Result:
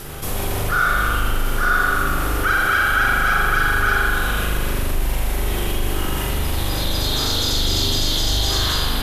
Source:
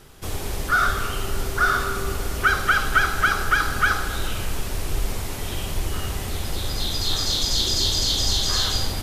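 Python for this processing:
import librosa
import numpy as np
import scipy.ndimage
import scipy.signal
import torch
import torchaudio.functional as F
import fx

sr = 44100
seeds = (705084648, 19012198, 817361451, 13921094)

y = fx.peak_eq(x, sr, hz=12000.0, db=10.0, octaves=0.58)
y = fx.rev_spring(y, sr, rt60_s=1.9, pass_ms=(40,), chirp_ms=65, drr_db=-6.5)
y = fx.env_flatten(y, sr, amount_pct=50)
y = F.gain(torch.from_numpy(y), -6.0).numpy()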